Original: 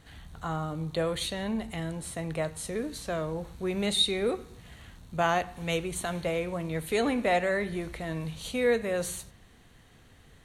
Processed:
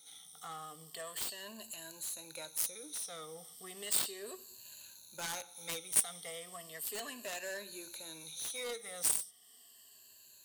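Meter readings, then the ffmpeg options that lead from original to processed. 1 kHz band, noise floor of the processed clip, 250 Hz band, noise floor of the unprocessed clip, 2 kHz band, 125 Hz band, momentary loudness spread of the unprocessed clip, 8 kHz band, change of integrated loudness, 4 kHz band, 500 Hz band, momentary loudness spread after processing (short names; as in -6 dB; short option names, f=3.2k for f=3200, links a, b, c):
-15.5 dB, -60 dBFS, -22.5 dB, -57 dBFS, -12.0 dB, -25.0 dB, 12 LU, +4.5 dB, -7.5 dB, -9.5 dB, -18.0 dB, 19 LU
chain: -filter_complex "[0:a]afftfilt=real='re*pow(10,17/40*sin(2*PI*(1.4*log(max(b,1)*sr/1024/100)/log(2)-(-0.35)*(pts-256)/sr)))':imag='im*pow(10,17/40*sin(2*PI*(1.4*log(max(b,1)*sr/1024/100)/log(2)-(-0.35)*(pts-256)/sr)))':win_size=1024:overlap=0.75,acrossover=split=670|2600[a][b][c];[b]adynamicsmooth=sensitivity=2.5:basefreq=1.2k[d];[a][d][c]amix=inputs=3:normalize=0,aderivative,asplit=2[e][f];[f]acompressor=threshold=-52dB:ratio=6,volume=-1.5dB[g];[e][g]amix=inputs=2:normalize=0,aeval=exprs='0.133*(cos(1*acos(clip(val(0)/0.133,-1,1)))-cos(1*PI/2))+0.0376*(cos(7*acos(clip(val(0)/0.133,-1,1)))-cos(7*PI/2))+0.00211*(cos(8*acos(clip(val(0)/0.133,-1,1)))-cos(8*PI/2))':c=same,lowshelf=f=64:g=-11.5,volume=1.5dB"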